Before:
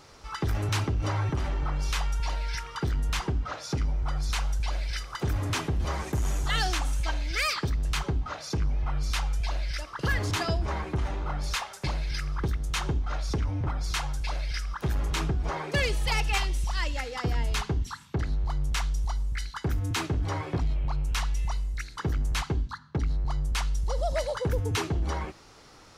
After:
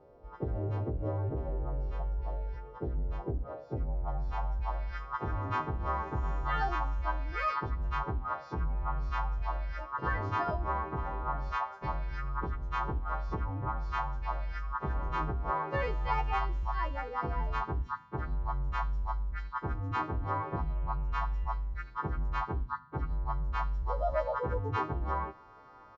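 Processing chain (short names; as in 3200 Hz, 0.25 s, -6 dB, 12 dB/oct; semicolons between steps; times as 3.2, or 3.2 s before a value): frequency quantiser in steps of 2 st; downsampling 16000 Hz; low-pass sweep 540 Hz -> 1100 Hz, 3.58–4.96; gain -4.5 dB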